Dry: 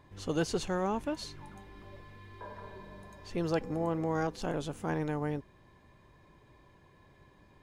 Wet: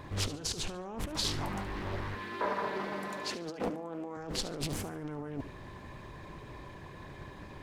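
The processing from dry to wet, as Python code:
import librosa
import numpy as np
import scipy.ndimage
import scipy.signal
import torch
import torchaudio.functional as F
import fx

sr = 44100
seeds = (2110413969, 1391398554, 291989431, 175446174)

y = fx.highpass(x, sr, hz=180.0, slope=24, at=(2.15, 4.17))
y = fx.over_compress(y, sr, threshold_db=-43.0, ratio=-1.0)
y = fx.echo_feedback(y, sr, ms=72, feedback_pct=33, wet_db=-13.5)
y = fx.doppler_dist(y, sr, depth_ms=0.76)
y = y * 10.0 ** (6.0 / 20.0)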